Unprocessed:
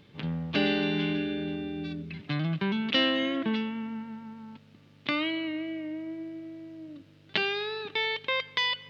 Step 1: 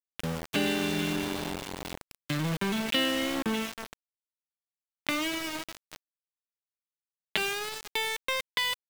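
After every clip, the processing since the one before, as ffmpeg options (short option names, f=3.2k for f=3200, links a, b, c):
-af "aeval=exprs='val(0)*gte(abs(val(0)),0.0335)':c=same,acompressor=threshold=-33dB:ratio=1.5,volume=2.5dB"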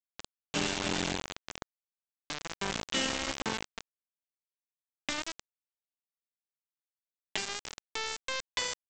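-filter_complex "[0:a]asplit=2[a][b];[b]adelay=298,lowpass=f=1.4k:p=1,volume=-7.5dB,asplit=2[c][d];[d]adelay=298,lowpass=f=1.4k:p=1,volume=0.31,asplit=2[e][f];[f]adelay=298,lowpass=f=1.4k:p=1,volume=0.31,asplit=2[g][h];[h]adelay=298,lowpass=f=1.4k:p=1,volume=0.31[i];[a][c][e][g][i]amix=inputs=5:normalize=0,aresample=16000,acrusher=bits=3:mix=0:aa=0.000001,aresample=44100,volume=-5.5dB"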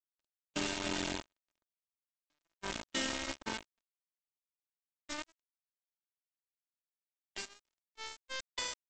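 -af "agate=range=-41dB:threshold=-33dB:ratio=16:detection=peak,aecho=1:1:3.2:0.38,volume=-5dB"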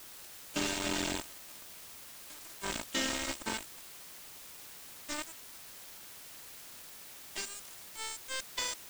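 -af "aeval=exprs='val(0)+0.5*0.0112*sgn(val(0))':c=same,volume=1dB"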